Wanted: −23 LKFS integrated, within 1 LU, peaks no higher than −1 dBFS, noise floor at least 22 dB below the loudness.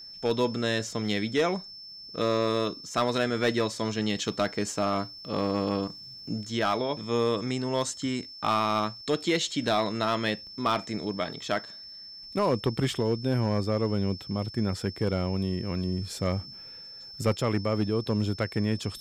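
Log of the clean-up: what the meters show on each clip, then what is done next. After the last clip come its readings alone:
share of clipped samples 0.5%; peaks flattened at −17.5 dBFS; interfering tone 5,300 Hz; level of the tone −42 dBFS; integrated loudness −28.5 LKFS; sample peak −17.5 dBFS; target loudness −23.0 LKFS
→ clipped peaks rebuilt −17.5 dBFS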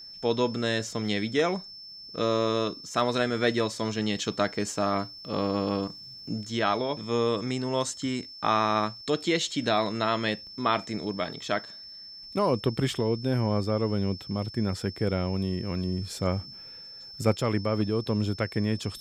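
share of clipped samples 0.0%; interfering tone 5,300 Hz; level of the tone −42 dBFS
→ notch filter 5,300 Hz, Q 30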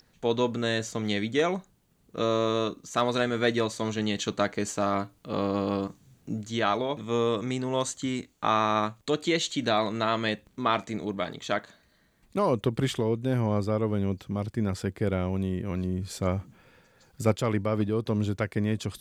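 interfering tone none found; integrated loudness −28.5 LKFS; sample peak −9.5 dBFS; target loudness −23.0 LKFS
→ level +5.5 dB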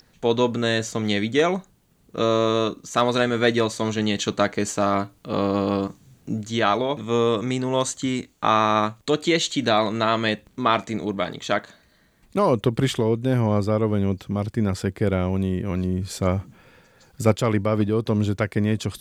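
integrated loudness −23.0 LKFS; sample peak −4.0 dBFS; background noise floor −59 dBFS

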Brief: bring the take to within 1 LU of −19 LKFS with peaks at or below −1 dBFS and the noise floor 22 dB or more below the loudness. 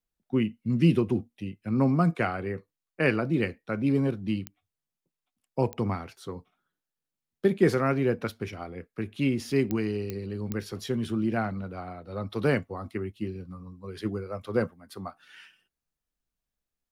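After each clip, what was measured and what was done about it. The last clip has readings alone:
number of clicks 5; integrated loudness −28.5 LKFS; sample peak −9.5 dBFS; target loudness −19.0 LKFS
→ click removal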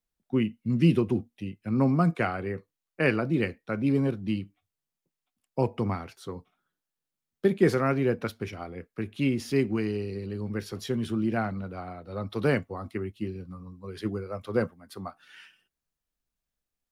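number of clicks 0; integrated loudness −28.5 LKFS; sample peak −9.5 dBFS; target loudness −19.0 LKFS
→ level +9.5 dB
brickwall limiter −1 dBFS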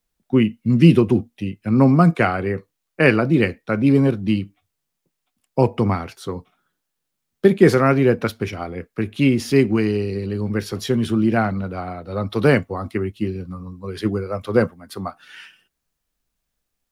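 integrated loudness −19.0 LKFS; sample peak −1.0 dBFS; background noise floor −78 dBFS

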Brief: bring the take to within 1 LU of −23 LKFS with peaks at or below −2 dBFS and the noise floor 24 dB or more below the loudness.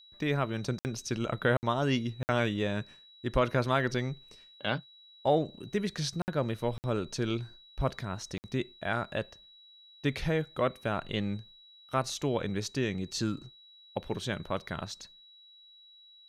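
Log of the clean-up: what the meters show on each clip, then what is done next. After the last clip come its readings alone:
number of dropouts 6; longest dropout 59 ms; interfering tone 3,900 Hz; level of the tone −54 dBFS; integrated loudness −32.5 LKFS; sample peak −13.5 dBFS; target loudness −23.0 LKFS
→ repair the gap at 0:00.79/0:01.57/0:02.23/0:06.22/0:06.78/0:08.38, 59 ms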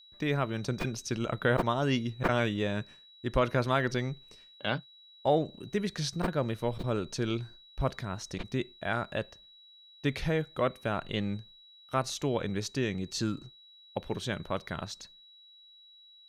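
number of dropouts 0; interfering tone 3,900 Hz; level of the tone −54 dBFS
→ notch filter 3,900 Hz, Q 30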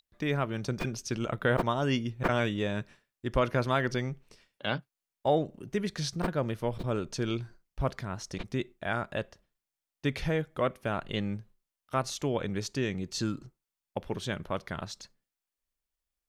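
interfering tone none found; integrated loudness −32.5 LKFS; sample peak −13.5 dBFS; target loudness −23.0 LKFS
→ level +9.5 dB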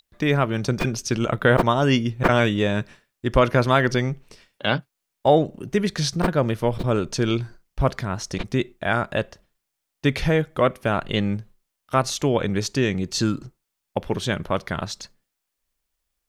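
integrated loudness −23.0 LKFS; sample peak −4.0 dBFS; background noise floor −80 dBFS

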